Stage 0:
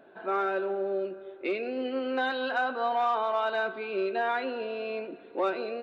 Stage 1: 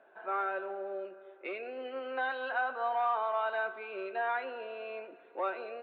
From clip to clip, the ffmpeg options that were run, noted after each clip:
ffmpeg -i in.wav -filter_complex "[0:a]acrossover=split=500 3000:gain=0.141 1 0.0631[link_01][link_02][link_03];[link_01][link_02][link_03]amix=inputs=3:normalize=0,volume=-2.5dB" out.wav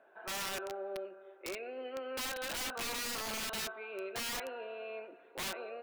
ffmpeg -i in.wav -af "aeval=exprs='(mod(35.5*val(0)+1,2)-1)/35.5':channel_layout=same,volume=-2dB" out.wav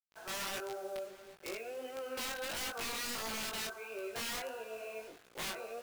ffmpeg -i in.wav -af "acrusher=bits=8:mix=0:aa=0.000001,flanger=delay=17.5:depth=4.9:speed=1.5,volume=2dB" out.wav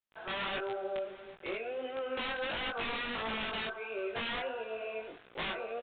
ffmpeg -i in.wav -af "aresample=8000,aresample=44100,volume=5dB" -ar 48000 -c:a libopus -b:a 48k out.opus

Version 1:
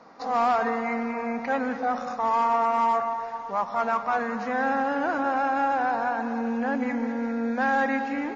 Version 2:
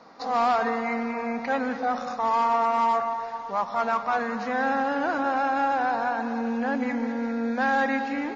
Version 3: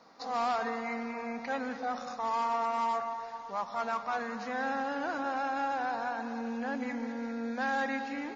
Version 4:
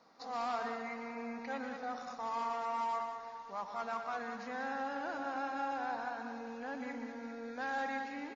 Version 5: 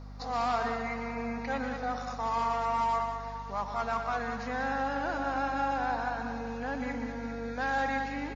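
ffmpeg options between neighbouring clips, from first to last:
ffmpeg -i in.wav -af "equalizer=frequency=4100:width=1.6:gain=5.5" out.wav
ffmpeg -i in.wav -af "highshelf=frequency=4200:gain=8.5,volume=-8.5dB" out.wav
ffmpeg -i in.wav -af "aecho=1:1:119.5|192.4:0.316|0.355,volume=-6.5dB" out.wav
ffmpeg -i in.wav -af "aeval=exprs='val(0)+0.00316*(sin(2*PI*50*n/s)+sin(2*PI*2*50*n/s)/2+sin(2*PI*3*50*n/s)/3+sin(2*PI*4*50*n/s)/4+sin(2*PI*5*50*n/s)/5)':channel_layout=same,volume=7dB" out.wav

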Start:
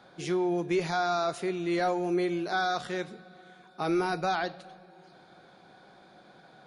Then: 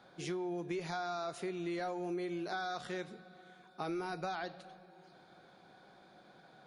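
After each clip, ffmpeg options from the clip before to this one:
ffmpeg -i in.wav -af "acompressor=threshold=-30dB:ratio=6,volume=-5dB" out.wav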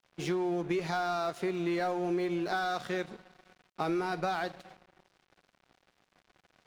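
ffmpeg -i in.wav -af "highshelf=frequency=5800:gain=-7.5,aeval=exprs='sgn(val(0))*max(abs(val(0))-0.00168,0)':channel_layout=same,volume=8dB" out.wav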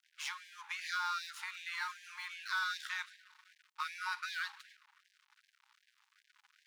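ffmpeg -i in.wav -af "afftfilt=real='re*gte(b*sr/1024,780*pow(1600/780,0.5+0.5*sin(2*PI*2.6*pts/sr)))':imag='im*gte(b*sr/1024,780*pow(1600/780,0.5+0.5*sin(2*PI*2.6*pts/sr)))':win_size=1024:overlap=0.75,volume=1dB" out.wav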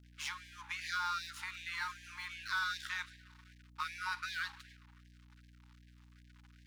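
ffmpeg -i in.wav -af "aeval=exprs='val(0)+0.00112*(sin(2*PI*60*n/s)+sin(2*PI*2*60*n/s)/2+sin(2*PI*3*60*n/s)/3+sin(2*PI*4*60*n/s)/4+sin(2*PI*5*60*n/s)/5)':channel_layout=same" out.wav

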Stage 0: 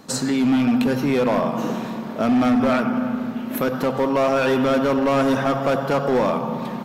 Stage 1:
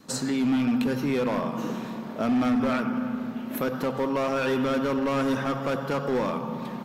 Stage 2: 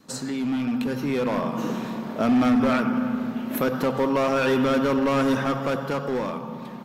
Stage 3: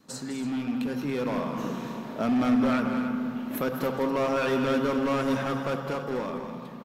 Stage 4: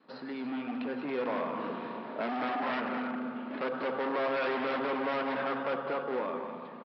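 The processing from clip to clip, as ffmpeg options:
ffmpeg -i in.wav -af "adynamicequalizer=threshold=0.0141:dfrequency=690:dqfactor=2.9:tfrequency=690:tqfactor=2.9:attack=5:release=100:ratio=0.375:range=3.5:mode=cutabove:tftype=bell,volume=-5.5dB" out.wav
ffmpeg -i in.wav -af "dynaudnorm=framelen=230:gausssize=11:maxgain=6.5dB,volume=-2.5dB" out.wav
ffmpeg -i in.wav -af "aecho=1:1:204.1|282.8:0.355|0.251,volume=-5dB" out.wav
ffmpeg -i in.wav -af "aresample=11025,aeval=exprs='0.0596*(abs(mod(val(0)/0.0596+3,4)-2)-1)':channel_layout=same,aresample=44100,highpass=340,lowpass=2600" out.wav

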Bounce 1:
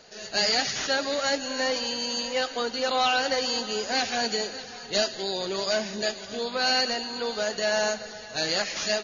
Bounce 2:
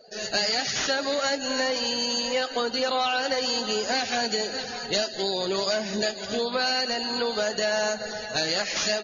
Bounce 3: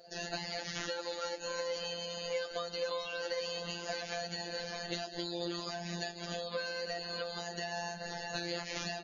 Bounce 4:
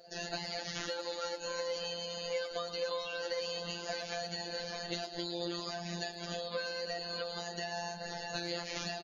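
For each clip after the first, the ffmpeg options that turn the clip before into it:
ffmpeg -i in.wav -af "acompressor=threshold=-31dB:ratio=4,afftdn=noise_reduction=21:noise_floor=-48,volume=7.5dB" out.wav
ffmpeg -i in.wav -filter_complex "[0:a]acrossover=split=530|3600[link_01][link_02][link_03];[link_01]acompressor=threshold=-38dB:ratio=4[link_04];[link_02]acompressor=threshold=-38dB:ratio=4[link_05];[link_03]acompressor=threshold=-44dB:ratio=4[link_06];[link_04][link_05][link_06]amix=inputs=3:normalize=0,afftfilt=real='hypot(re,im)*cos(PI*b)':imag='0':win_size=1024:overlap=0.75" out.wav
ffmpeg -i in.wav -filter_complex "[0:a]asplit=2[link_01][link_02];[link_02]adelay=110,highpass=300,lowpass=3400,asoftclip=type=hard:threshold=-27.5dB,volume=-11dB[link_03];[link_01][link_03]amix=inputs=2:normalize=0" out.wav

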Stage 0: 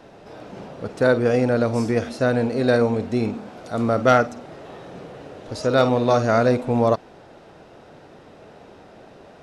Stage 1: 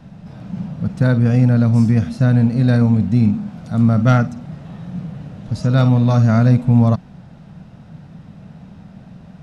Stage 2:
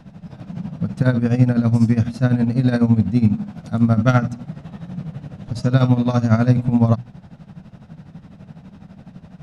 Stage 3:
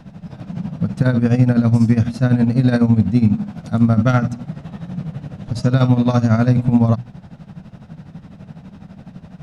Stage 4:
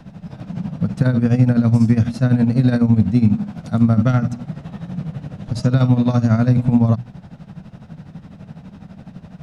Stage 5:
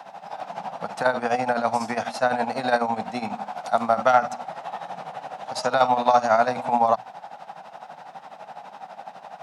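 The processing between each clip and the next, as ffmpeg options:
ffmpeg -i in.wav -af "lowshelf=frequency=260:width_type=q:width=3:gain=13,volume=-2.5dB" out.wav
ffmpeg -i in.wav -af "bandreject=frequency=60:width_type=h:width=6,bandreject=frequency=120:width_type=h:width=6,tremolo=f=12:d=0.75,volume=2dB" out.wav
ffmpeg -i in.wav -af "alimiter=level_in=6dB:limit=-1dB:release=50:level=0:latency=1,volume=-3dB" out.wav
ffmpeg -i in.wav -filter_complex "[0:a]acrossover=split=300[link_01][link_02];[link_02]acompressor=threshold=-22dB:ratio=4[link_03];[link_01][link_03]amix=inputs=2:normalize=0" out.wav
ffmpeg -i in.wav -af "highpass=frequency=790:width_type=q:width=4.9,volume=3dB" out.wav

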